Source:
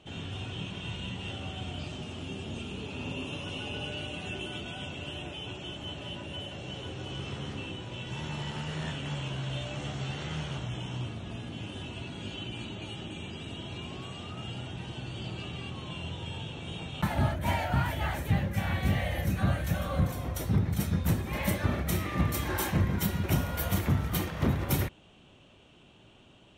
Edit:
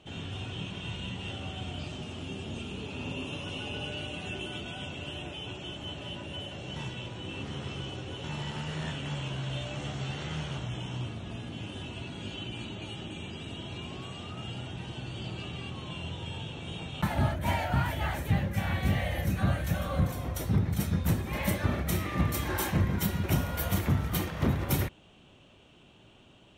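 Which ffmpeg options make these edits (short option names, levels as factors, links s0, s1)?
-filter_complex "[0:a]asplit=3[s0][s1][s2];[s0]atrim=end=6.762[s3];[s1]atrim=start=6.758:end=8.242,asetpts=PTS-STARTPTS,areverse[s4];[s2]atrim=start=8.238[s5];[s3][s4]acrossfade=d=0.004:c1=hsin:c2=hsin[s6];[s6][s5]acrossfade=d=0.004:c1=hsin:c2=hsin"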